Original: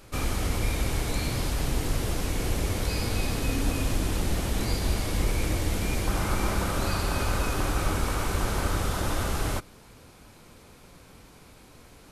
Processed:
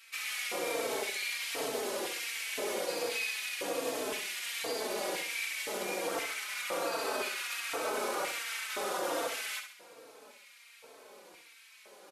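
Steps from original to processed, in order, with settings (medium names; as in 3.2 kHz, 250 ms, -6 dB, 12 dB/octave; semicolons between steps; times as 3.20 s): high-pass 130 Hz 24 dB/octave; peak limiter -23.5 dBFS, peak gain reduction 6 dB; LFO high-pass square 0.97 Hz 480–2200 Hz; flutter echo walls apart 11.4 m, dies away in 0.53 s; endless flanger 3.9 ms -1.3 Hz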